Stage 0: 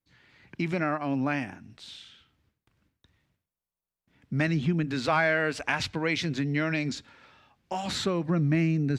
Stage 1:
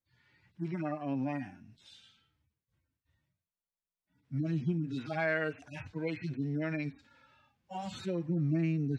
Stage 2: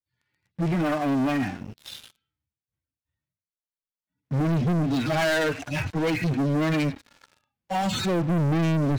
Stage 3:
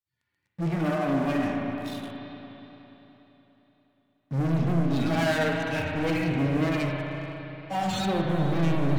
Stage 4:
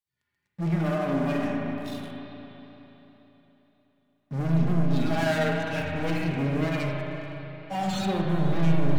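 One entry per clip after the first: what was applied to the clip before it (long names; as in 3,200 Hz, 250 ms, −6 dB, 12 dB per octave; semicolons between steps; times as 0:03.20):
harmonic-percussive split with one part muted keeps harmonic; level −5.5 dB
leveller curve on the samples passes 5
spring reverb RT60 3.7 s, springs 36/59 ms, chirp 40 ms, DRR −0.5 dB; tape wow and flutter 26 cents; level −4.5 dB
rectangular room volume 3,900 cubic metres, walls furnished, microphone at 1.3 metres; level −2 dB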